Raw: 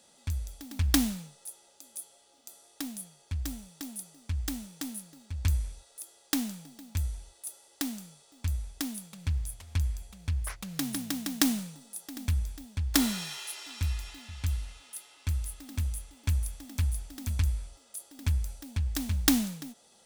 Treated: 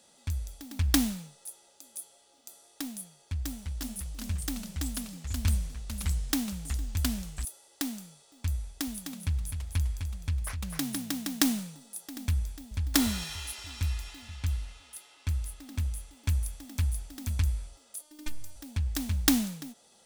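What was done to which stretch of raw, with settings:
0:03.17–0:07.45: delay with pitch and tempo change per echo 329 ms, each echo −2 semitones, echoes 3
0:08.62–0:10.80: single-tap delay 255 ms −6.5 dB
0:12.42–0:12.94: delay throw 290 ms, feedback 55%, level −7 dB
0:14.36–0:15.99: high-shelf EQ 7,200 Hz −4.5 dB
0:18.01–0:18.56: phases set to zero 303 Hz

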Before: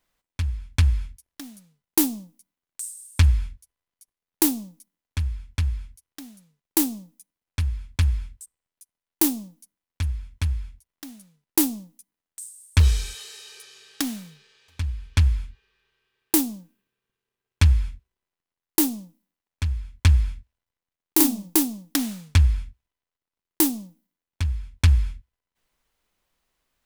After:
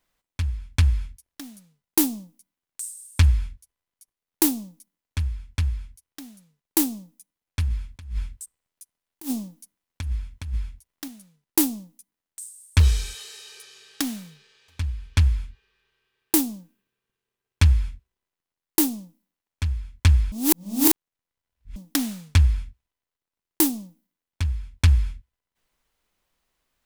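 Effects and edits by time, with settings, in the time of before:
0:07.68–0:11.08: compressor whose output falls as the input rises −26 dBFS, ratio −0.5
0:20.32–0:21.76: reverse

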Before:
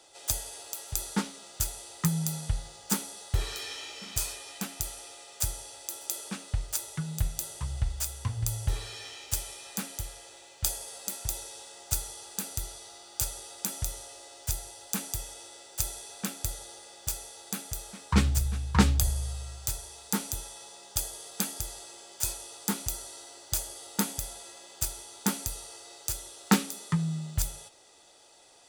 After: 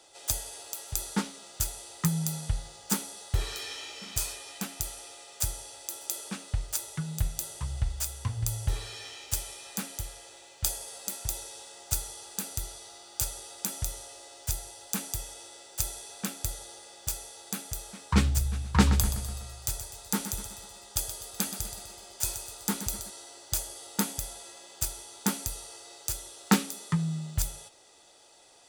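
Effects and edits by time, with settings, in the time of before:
0:18.49–0:23.10: repeating echo 125 ms, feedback 49%, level −10.5 dB

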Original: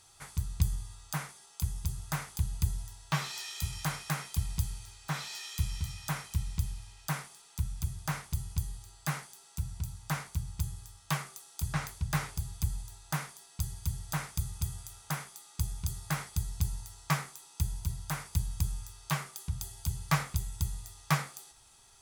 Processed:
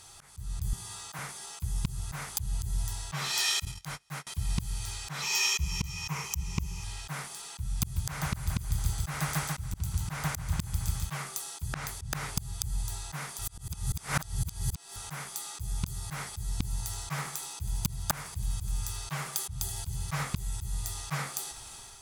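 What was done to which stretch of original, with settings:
0:00.73–0:01.19: high-pass filter 210 Hz
0:03.65–0:04.27: noise gate −39 dBFS, range −31 dB
0:05.22–0:06.84: EQ curve with evenly spaced ripples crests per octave 0.77, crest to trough 11 dB
0:07.82–0:11.17: repeating echo 141 ms, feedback 57%, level −7.5 dB
0:13.39–0:14.96: reverse
0:16.63–0:20.25: repeating echo 76 ms, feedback 36%, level −18 dB
whole clip: volume swells 369 ms; automatic gain control gain up to 6.5 dB; level +8 dB

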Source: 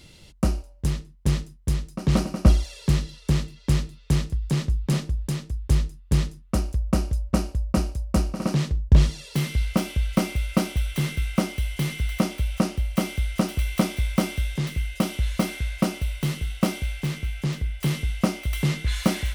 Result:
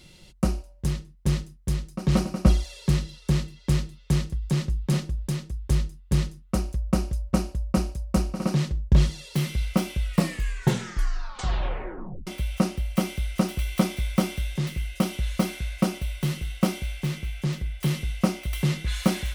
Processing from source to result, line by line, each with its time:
0:09.99: tape stop 2.28 s
whole clip: comb filter 5.5 ms, depth 38%; level −2 dB

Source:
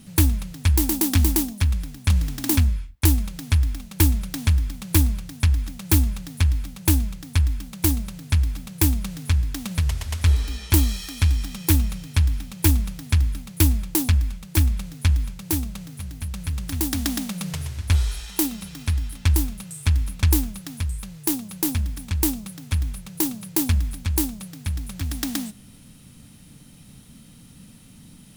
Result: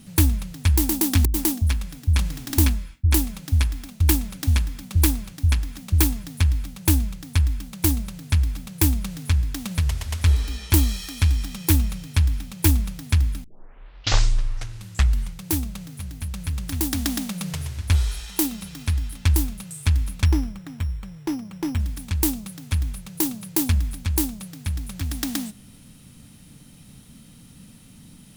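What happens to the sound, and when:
0:01.25–0:06.24: multiband delay without the direct sound lows, highs 90 ms, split 160 Hz
0:13.44: tape start 2.03 s
0:20.25–0:21.80: bad sample-rate conversion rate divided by 8×, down filtered, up hold

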